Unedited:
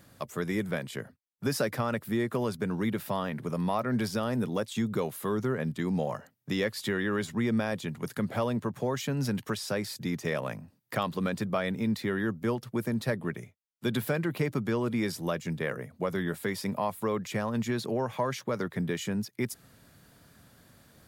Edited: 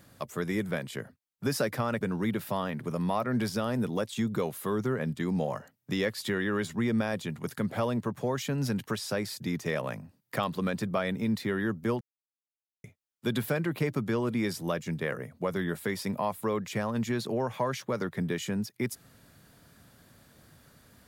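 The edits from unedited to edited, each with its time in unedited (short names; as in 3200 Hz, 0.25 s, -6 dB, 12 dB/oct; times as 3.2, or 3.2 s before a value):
2.01–2.6 cut
12.6–13.43 mute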